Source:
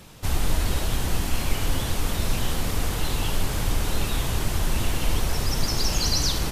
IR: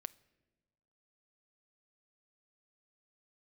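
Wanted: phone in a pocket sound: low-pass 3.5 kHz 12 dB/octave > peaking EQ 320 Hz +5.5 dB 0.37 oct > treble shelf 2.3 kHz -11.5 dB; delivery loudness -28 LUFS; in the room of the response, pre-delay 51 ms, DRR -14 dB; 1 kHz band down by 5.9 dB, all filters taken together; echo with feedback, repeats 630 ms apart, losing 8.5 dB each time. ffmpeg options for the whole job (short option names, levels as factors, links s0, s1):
-filter_complex "[0:a]equalizer=f=1000:t=o:g=-5.5,aecho=1:1:630|1260|1890|2520:0.376|0.143|0.0543|0.0206,asplit=2[s0][s1];[1:a]atrim=start_sample=2205,adelay=51[s2];[s1][s2]afir=irnorm=-1:irlink=0,volume=7.94[s3];[s0][s3]amix=inputs=2:normalize=0,lowpass=3500,equalizer=f=320:t=o:w=0.37:g=5.5,highshelf=f=2300:g=-11.5,volume=0.211"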